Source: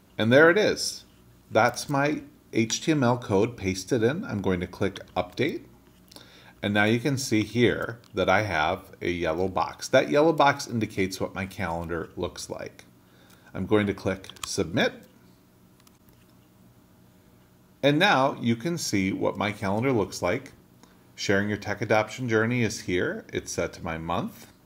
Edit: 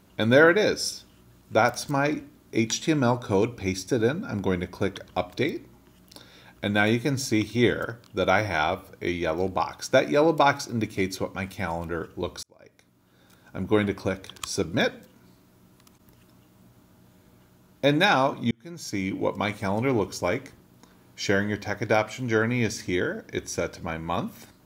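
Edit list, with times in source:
0:12.43–0:13.63: fade in
0:18.51–0:19.27: fade in

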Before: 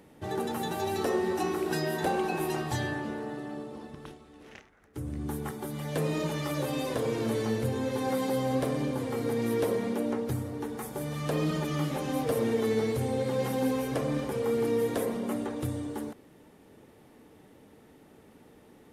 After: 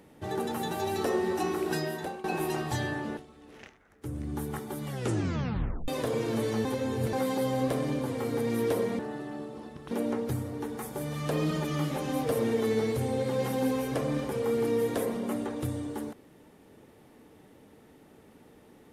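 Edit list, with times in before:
0:01.74–0:02.24: fade out, to −18.5 dB
0:03.17–0:04.09: move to 0:09.91
0:05.78: tape stop 1.02 s
0:07.57–0:08.05: reverse

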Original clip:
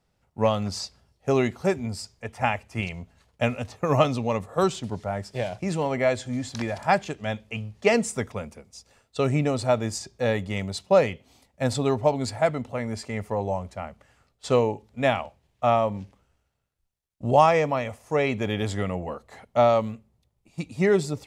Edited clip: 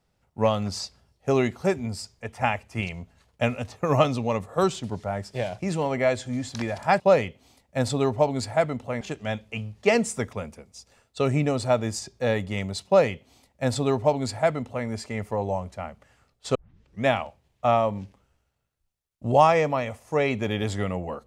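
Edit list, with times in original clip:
0:10.85–0:12.86: duplicate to 0:07.00
0:14.54: tape start 0.51 s

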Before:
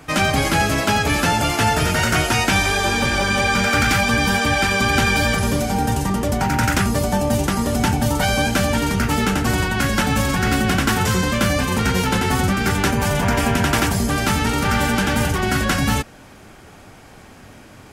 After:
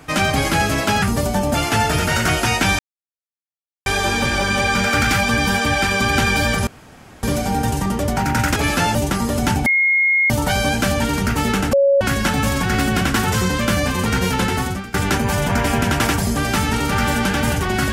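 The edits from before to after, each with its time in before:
0:01.02–0:01.41: swap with 0:06.80–0:07.32
0:02.66: splice in silence 1.07 s
0:05.47: splice in room tone 0.56 s
0:08.03: insert tone 2,150 Hz −12.5 dBFS 0.64 s
0:09.46–0:09.74: beep over 556 Hz −10.5 dBFS
0:12.22–0:12.67: fade out, to −20.5 dB

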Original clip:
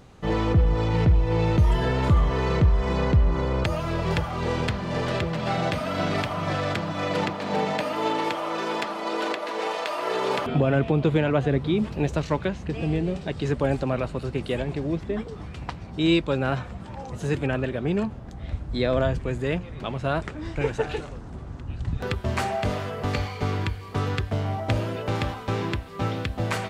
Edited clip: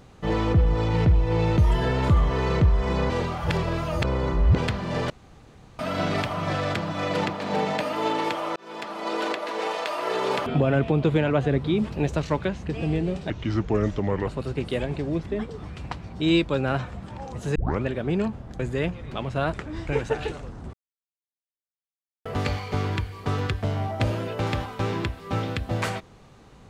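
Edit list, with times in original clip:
0:03.10–0:04.58: reverse
0:05.10–0:05.79: fill with room tone
0:08.56–0:09.09: fade in
0:13.30–0:14.05: play speed 77%
0:17.33: tape start 0.27 s
0:18.37–0:19.28: remove
0:21.42–0:22.94: silence

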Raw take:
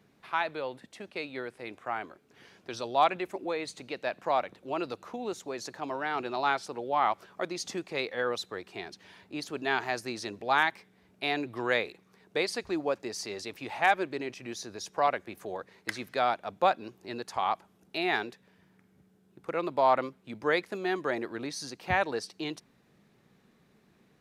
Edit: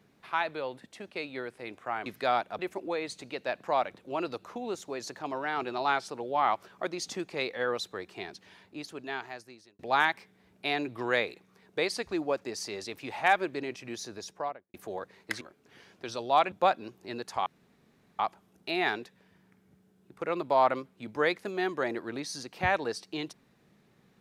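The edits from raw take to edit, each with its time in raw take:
0:02.06–0:03.17: swap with 0:15.99–0:16.52
0:08.83–0:10.37: fade out
0:14.70–0:15.32: fade out and dull
0:17.46: splice in room tone 0.73 s

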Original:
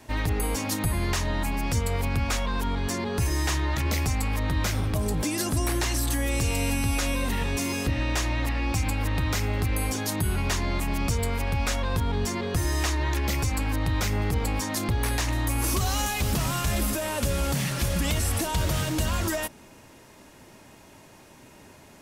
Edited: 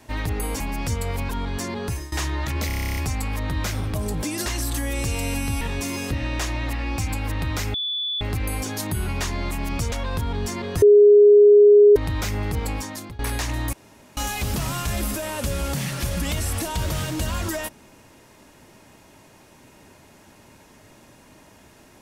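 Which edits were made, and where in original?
0:00.60–0:01.45: remove
0:02.14–0:02.59: remove
0:03.14–0:03.42: fade out, to −19 dB
0:03.97: stutter 0.03 s, 11 plays
0:05.46–0:05.82: remove
0:06.97–0:07.37: remove
0:09.50: insert tone 3,460 Hz −23.5 dBFS 0.47 s
0:11.21–0:11.71: remove
0:12.61–0:13.75: beep over 413 Hz −8 dBFS
0:14.50–0:14.98: fade out, to −19 dB
0:15.52–0:15.96: fill with room tone

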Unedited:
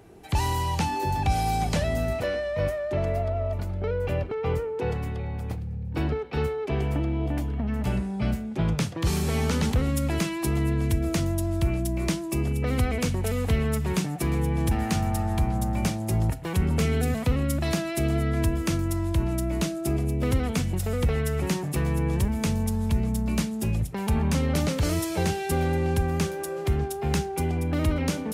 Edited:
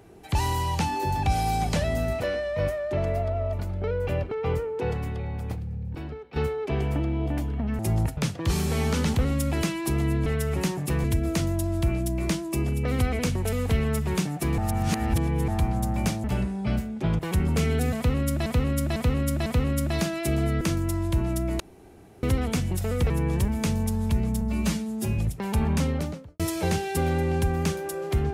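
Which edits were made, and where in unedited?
0:05.95–0:06.36: clip gain −9.5 dB
0:07.79–0:08.74: swap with 0:16.03–0:16.41
0:14.37–0:15.27: reverse
0:17.18–0:17.68: repeat, 4 plays
0:18.33–0:18.63: remove
0:19.62–0:20.25: fill with room tone
0:21.12–0:21.90: move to 0:10.83
0:23.21–0:23.72: time-stretch 1.5×
0:24.29–0:24.94: fade out and dull

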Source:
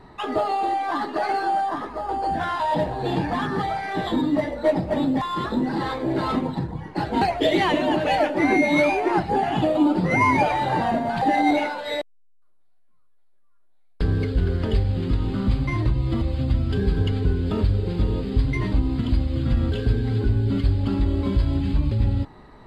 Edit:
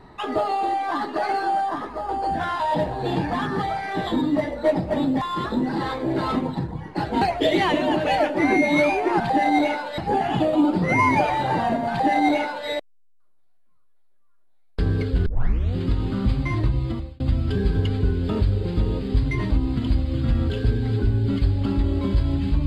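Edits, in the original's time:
0:11.12–0:11.90: duplicate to 0:09.20
0:14.48: tape start 0.49 s
0:16.00–0:16.42: fade out

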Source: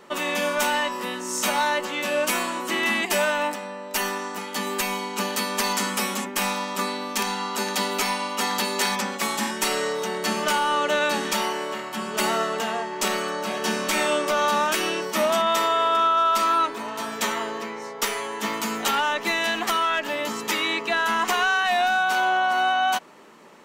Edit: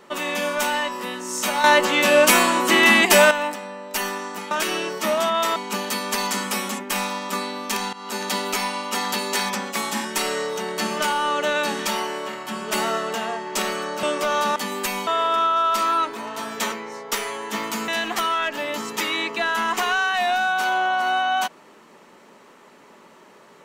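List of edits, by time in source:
0:01.64–0:03.31: clip gain +9 dB
0:04.51–0:05.02: swap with 0:14.63–0:15.68
0:07.39–0:07.79: fade in equal-power, from −16 dB
0:13.49–0:14.10: remove
0:17.33–0:17.62: remove
0:18.78–0:19.39: remove

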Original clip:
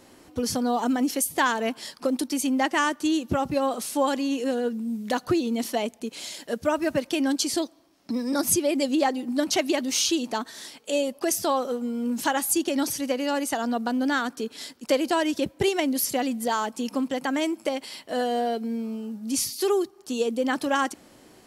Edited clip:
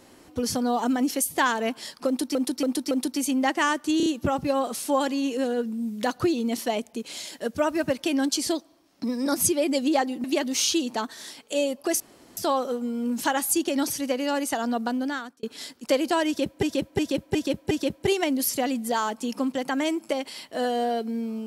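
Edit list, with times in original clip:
0:02.07–0:02.35: repeat, 4 plays
0:03.13: stutter 0.03 s, 4 plays
0:09.31–0:09.61: remove
0:11.37: splice in room tone 0.37 s
0:13.86–0:14.43: fade out linear
0:15.27–0:15.63: repeat, 5 plays

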